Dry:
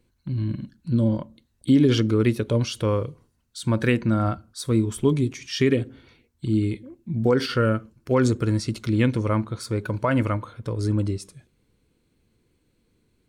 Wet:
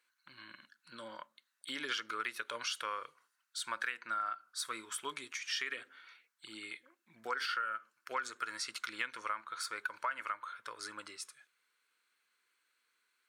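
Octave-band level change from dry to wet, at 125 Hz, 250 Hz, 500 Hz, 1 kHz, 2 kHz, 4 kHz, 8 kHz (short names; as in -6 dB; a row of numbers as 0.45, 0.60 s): under -40 dB, -33.5 dB, -25.0 dB, -6.0 dB, -4.5 dB, -6.5 dB, -5.5 dB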